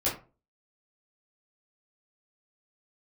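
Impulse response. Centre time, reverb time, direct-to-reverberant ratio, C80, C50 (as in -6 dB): 28 ms, 0.35 s, -9.0 dB, 14.5 dB, 8.0 dB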